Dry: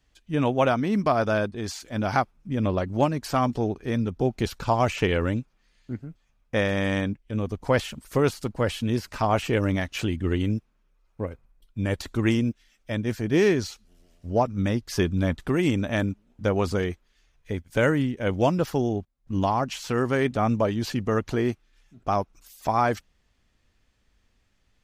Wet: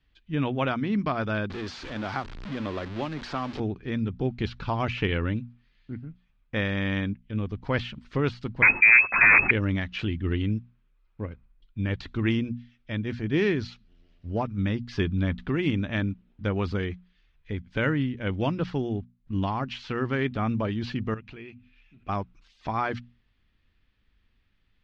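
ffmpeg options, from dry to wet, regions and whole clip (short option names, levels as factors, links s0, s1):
-filter_complex "[0:a]asettb=1/sr,asplit=3[s0][s1][s2];[s0]atrim=end=1.504[s3];[s1]atrim=start=1.5:end=3.6,asetpts=PTS-STARTPTS,afade=t=in:d=0.004:c=qsin,afade=t=out:st=2.096:d=0.004:c=qsin,aeval=exprs='val(0)+0.5*0.0501*sgn(val(0))':c=same,highshelf=f=7100:g=7,acrossover=split=290|1500|4900[s4][s5][s6][s7];[s4]acompressor=threshold=0.01:ratio=3[s8];[s5]acompressor=threshold=0.0708:ratio=3[s9];[s6]acompressor=threshold=0.00708:ratio=3[s10];[s7]acompressor=threshold=0.0251:ratio=3[s11];[s8][s9][s10][s11]amix=inputs=4:normalize=0[s12];[s2]atrim=start=3.596[s13];[s3][s12]acrossfade=d=0.004:c1=hsin:c2=qsin[s14];[s14][s13]acrossfade=d=0.004:c1=qsin:c2=hsin,asettb=1/sr,asplit=3[s15][s16][s17];[s15]atrim=end=8.624[s18];[s16]atrim=start=8.62:end=9.51,asetpts=PTS-STARTPTS,afade=t=in:d=0.004:c=qsin,afade=t=out:st=0.886:d=0.004:c=qsin,aeval=exprs='0.299*sin(PI/2*4.47*val(0)/0.299)':c=same,lowpass=f=2200:t=q:w=0.5098,lowpass=f=2200:t=q:w=0.6013,lowpass=f=2200:t=q:w=0.9,lowpass=f=2200:t=q:w=2.563,afreqshift=-2600[s19];[s17]atrim=start=9.506[s20];[s18][s19]acrossfade=d=0.004:c1=hsin:c2=qsin[s21];[s21][s20]acrossfade=d=0.004:c1=qsin:c2=hsin,asettb=1/sr,asplit=3[s22][s23][s24];[s22]atrim=end=21.144[s25];[s23]atrim=start=21.14:end=22.09,asetpts=PTS-STARTPTS,afade=t=in:d=0.004:c=qsin,afade=t=out:st=0.946:d=0.004:c=qsin,equalizer=f=2500:w=3.7:g=14,bandreject=f=50:t=h:w=6,bandreject=f=100:t=h:w=6,bandreject=f=150:t=h:w=6,bandreject=f=200:t=h:w=6,bandreject=f=250:t=h:w=6,acompressor=threshold=0.00398:ratio=2:attack=3.2:release=140:knee=1:detection=peak[s26];[s24]atrim=start=22.086[s27];[s25][s26]acrossfade=d=0.004:c1=hsin:c2=qsin[s28];[s28][s27]acrossfade=d=0.004:c1=qsin:c2=hsin,lowpass=f=3900:w=0.5412,lowpass=f=3900:w=1.3066,equalizer=f=630:t=o:w=1.5:g=-9,bandreject=f=60:t=h:w=6,bandreject=f=120:t=h:w=6,bandreject=f=180:t=h:w=6,bandreject=f=240:t=h:w=6"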